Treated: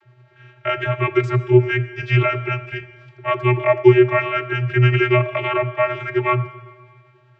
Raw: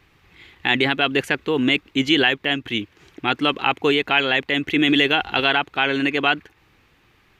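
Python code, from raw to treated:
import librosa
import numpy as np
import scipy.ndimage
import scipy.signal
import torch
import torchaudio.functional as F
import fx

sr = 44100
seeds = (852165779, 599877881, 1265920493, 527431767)

y = fx.pitch_heads(x, sr, semitones=-4.0)
y = fx.vocoder(y, sr, bands=32, carrier='square', carrier_hz=124.0)
y = fx.rev_schroeder(y, sr, rt60_s=1.6, comb_ms=26, drr_db=12.5)
y = y * librosa.db_to_amplitude(4.5)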